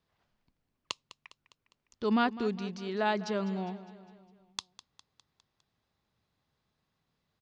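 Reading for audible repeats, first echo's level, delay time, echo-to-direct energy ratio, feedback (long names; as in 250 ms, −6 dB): 4, −16.0 dB, 203 ms, −14.5 dB, 55%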